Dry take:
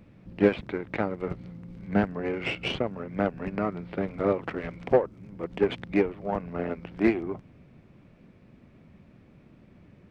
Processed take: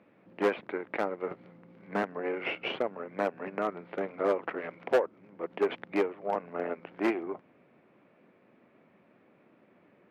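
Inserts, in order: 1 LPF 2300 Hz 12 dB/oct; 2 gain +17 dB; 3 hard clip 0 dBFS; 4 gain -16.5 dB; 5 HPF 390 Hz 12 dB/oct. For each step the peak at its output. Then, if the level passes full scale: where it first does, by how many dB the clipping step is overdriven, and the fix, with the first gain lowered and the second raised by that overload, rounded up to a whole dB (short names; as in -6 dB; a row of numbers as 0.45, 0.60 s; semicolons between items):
-8.0, +9.0, 0.0, -16.5, -12.0 dBFS; step 2, 9.0 dB; step 2 +8 dB, step 4 -7.5 dB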